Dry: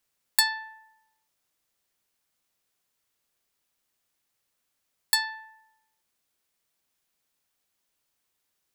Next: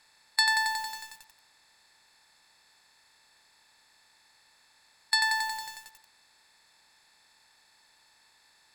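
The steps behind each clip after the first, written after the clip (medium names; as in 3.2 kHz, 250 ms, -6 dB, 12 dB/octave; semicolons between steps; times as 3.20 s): spectral levelling over time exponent 0.6; low-pass 6.3 kHz 12 dB/octave; bit-crushed delay 91 ms, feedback 80%, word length 7-bit, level -3.5 dB; trim -1.5 dB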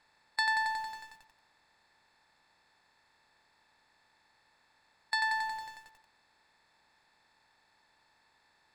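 low-pass 1.4 kHz 6 dB/octave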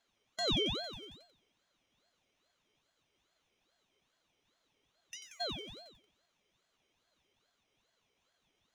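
feedback comb 160 Hz, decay 0.58 s, harmonics odd, mix 80%; spectral replace 4.85–5.38 s, 300–3400 Hz before; ring modulator with a swept carrier 1.9 kHz, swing 30%, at 2.4 Hz; trim +5.5 dB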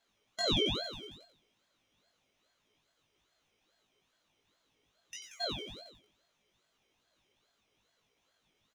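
doubling 19 ms -2.5 dB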